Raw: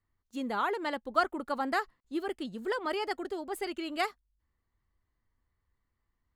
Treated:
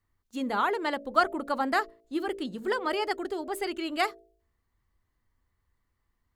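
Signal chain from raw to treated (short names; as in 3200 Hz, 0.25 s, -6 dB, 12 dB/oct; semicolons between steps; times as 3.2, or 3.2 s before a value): de-hum 56.24 Hz, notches 12; gain +4 dB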